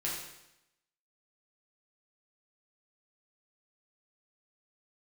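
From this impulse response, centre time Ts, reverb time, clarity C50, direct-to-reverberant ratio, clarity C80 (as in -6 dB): 62 ms, 0.85 s, 2.0 dB, -6.0 dB, 5.0 dB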